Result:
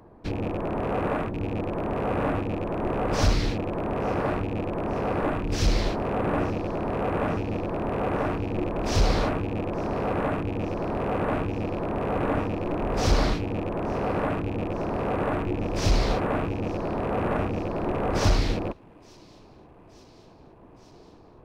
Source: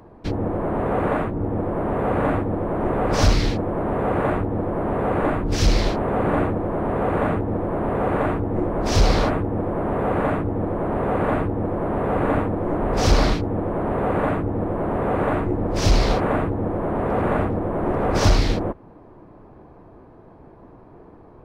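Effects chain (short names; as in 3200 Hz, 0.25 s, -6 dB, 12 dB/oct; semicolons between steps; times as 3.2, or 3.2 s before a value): rattling part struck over -25 dBFS, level -26 dBFS; thin delay 0.871 s, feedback 73%, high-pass 2800 Hz, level -23 dB; gain -5 dB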